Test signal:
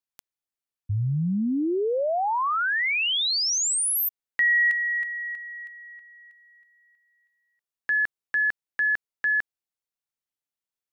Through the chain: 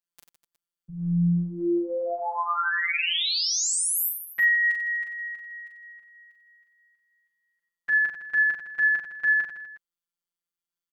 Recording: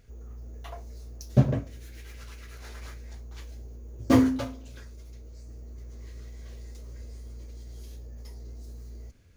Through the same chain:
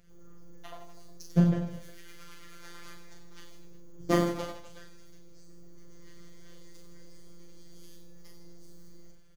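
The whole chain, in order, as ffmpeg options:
ffmpeg -i in.wav -af "afftfilt=real='hypot(re,im)*cos(PI*b)':imag='0':win_size=1024:overlap=0.75,aecho=1:1:40|92|159.6|247.5|361.7:0.631|0.398|0.251|0.158|0.1" out.wav

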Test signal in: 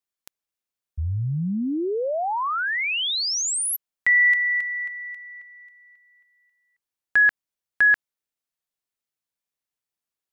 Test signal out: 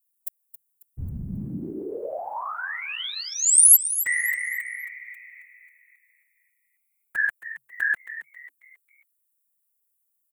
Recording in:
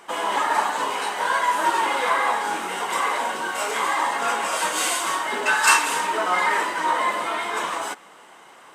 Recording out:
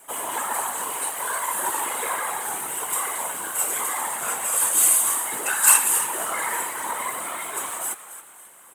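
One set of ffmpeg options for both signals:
ffmpeg -i in.wav -filter_complex "[0:a]afftfilt=real='hypot(re,im)*cos(2*PI*random(0))':imag='hypot(re,im)*sin(2*PI*random(1))':win_size=512:overlap=0.75,asplit=5[link_01][link_02][link_03][link_04][link_05];[link_02]adelay=271,afreqshift=130,volume=-13dB[link_06];[link_03]adelay=542,afreqshift=260,volume=-21.4dB[link_07];[link_04]adelay=813,afreqshift=390,volume=-29.8dB[link_08];[link_05]adelay=1084,afreqshift=520,volume=-38.2dB[link_09];[link_01][link_06][link_07][link_08][link_09]amix=inputs=5:normalize=0,aexciter=amount=15.7:drive=2.6:freq=7700,volume=-1.5dB" out.wav

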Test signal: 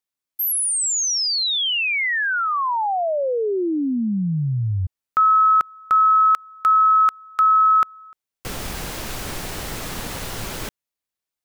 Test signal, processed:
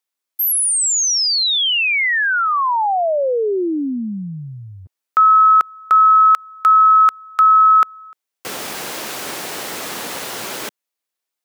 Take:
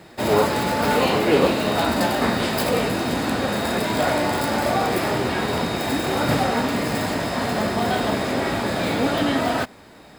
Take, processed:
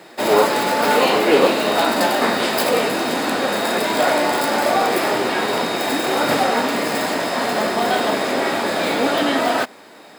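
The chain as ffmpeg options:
ffmpeg -i in.wav -af "highpass=300,volume=4.5dB" out.wav

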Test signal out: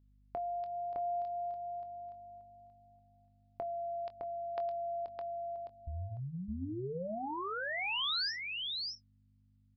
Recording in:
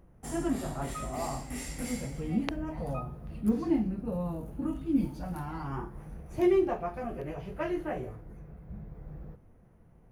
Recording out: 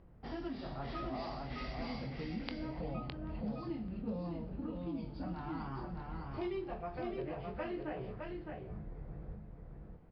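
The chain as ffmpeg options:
ffmpeg -i in.wav -filter_complex "[0:a]bandreject=frequency=50:width_type=h:width=6,bandreject=frequency=100:width_type=h:width=6,bandreject=frequency=150:width_type=h:width=6,bandreject=frequency=200:width_type=h:width=6,bandreject=frequency=250:width_type=h:width=6,acrossover=split=3000[link_01][link_02];[link_01]acompressor=threshold=-37dB:ratio=6[link_03];[link_03][link_02]amix=inputs=2:normalize=0,aeval=exprs='val(0)+0.000708*(sin(2*PI*50*n/s)+sin(2*PI*2*50*n/s)/2+sin(2*PI*3*50*n/s)/3+sin(2*PI*4*50*n/s)/4+sin(2*PI*5*50*n/s)/5)':channel_layout=same,asplit=2[link_04][link_05];[link_05]adelay=23,volume=-12.5dB[link_06];[link_04][link_06]amix=inputs=2:normalize=0,asplit=2[link_07][link_08];[link_08]aecho=0:1:611:0.631[link_09];[link_07][link_09]amix=inputs=2:normalize=0,aresample=11025,aresample=44100,volume=-2dB" out.wav

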